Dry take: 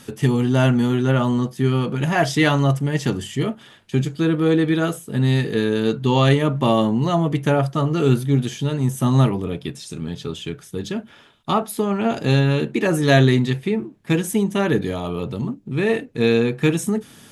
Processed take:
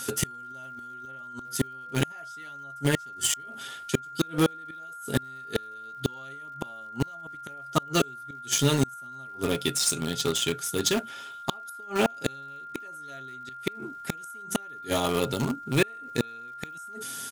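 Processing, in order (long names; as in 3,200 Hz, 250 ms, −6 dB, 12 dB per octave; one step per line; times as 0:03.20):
bass and treble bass −8 dB, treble +13 dB
comb filter 7.5 ms, depth 37%
gate with flip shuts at −13 dBFS, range −34 dB
in parallel at −9 dB: bit reduction 4 bits
on the sum: steady tone 1,400 Hz −39 dBFS
surface crackle 130 per second −50 dBFS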